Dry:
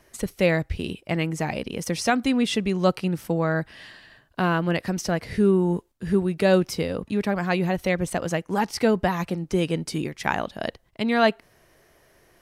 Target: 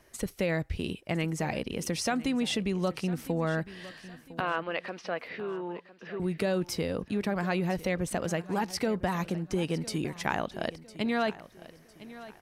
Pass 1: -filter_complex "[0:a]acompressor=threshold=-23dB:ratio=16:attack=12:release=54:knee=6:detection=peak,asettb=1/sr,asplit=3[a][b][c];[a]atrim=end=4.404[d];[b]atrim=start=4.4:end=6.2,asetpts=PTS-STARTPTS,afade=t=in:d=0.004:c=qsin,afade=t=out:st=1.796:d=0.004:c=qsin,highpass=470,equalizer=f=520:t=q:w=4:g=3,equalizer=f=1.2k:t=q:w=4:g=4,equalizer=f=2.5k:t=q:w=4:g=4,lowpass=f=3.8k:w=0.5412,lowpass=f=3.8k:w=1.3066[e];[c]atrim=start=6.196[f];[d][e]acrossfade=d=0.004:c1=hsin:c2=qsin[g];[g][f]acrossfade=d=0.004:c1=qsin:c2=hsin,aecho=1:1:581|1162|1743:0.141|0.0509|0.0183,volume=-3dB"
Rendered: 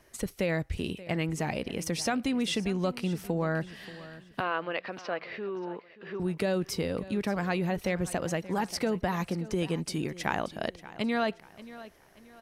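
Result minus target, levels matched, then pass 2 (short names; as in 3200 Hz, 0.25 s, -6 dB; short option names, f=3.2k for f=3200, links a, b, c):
echo 0.425 s early
-filter_complex "[0:a]acompressor=threshold=-23dB:ratio=16:attack=12:release=54:knee=6:detection=peak,asettb=1/sr,asplit=3[a][b][c];[a]atrim=end=4.404[d];[b]atrim=start=4.4:end=6.2,asetpts=PTS-STARTPTS,afade=t=in:d=0.004:c=qsin,afade=t=out:st=1.796:d=0.004:c=qsin,highpass=470,equalizer=f=520:t=q:w=4:g=3,equalizer=f=1.2k:t=q:w=4:g=4,equalizer=f=2.5k:t=q:w=4:g=4,lowpass=f=3.8k:w=0.5412,lowpass=f=3.8k:w=1.3066[e];[c]atrim=start=6.196[f];[d][e]acrossfade=d=0.004:c1=hsin:c2=qsin[g];[g][f]acrossfade=d=0.004:c1=qsin:c2=hsin,aecho=1:1:1006|2012|3018:0.141|0.0509|0.0183,volume=-3dB"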